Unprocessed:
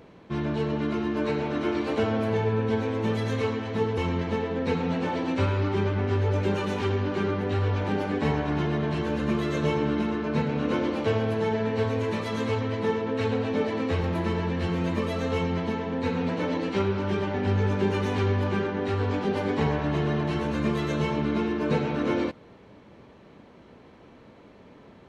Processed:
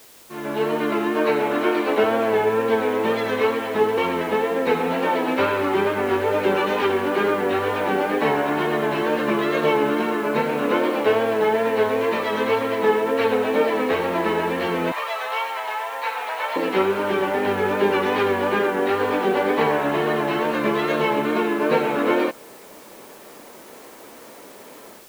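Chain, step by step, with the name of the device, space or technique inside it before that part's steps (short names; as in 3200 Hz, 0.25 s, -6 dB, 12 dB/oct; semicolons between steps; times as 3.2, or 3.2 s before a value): dictaphone (BPF 390–3100 Hz; AGC gain up to 15 dB; wow and flutter; white noise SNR 27 dB); 14.92–16.56 Chebyshev high-pass 760 Hz, order 3; gain -4 dB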